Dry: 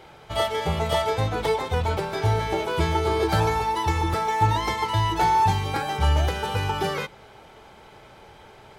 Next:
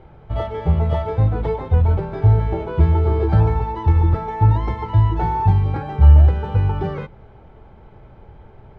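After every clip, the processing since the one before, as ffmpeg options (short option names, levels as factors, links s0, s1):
-af "lowpass=f=1800:p=1,aemphasis=mode=reproduction:type=riaa,volume=0.75"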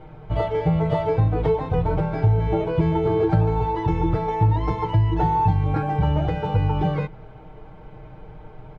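-af "aecho=1:1:6.5:0.99,acompressor=threshold=0.158:ratio=3"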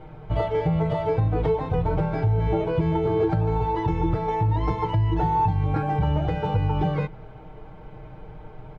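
-af "alimiter=limit=0.211:level=0:latency=1:release=196"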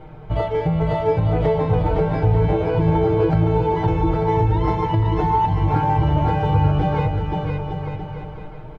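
-af "aecho=1:1:510|892.5|1179|1395|1556:0.631|0.398|0.251|0.158|0.1,volume=1.33"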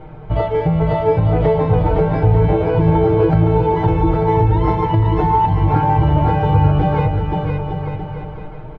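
-af "aemphasis=mode=reproduction:type=50fm,volume=1.5"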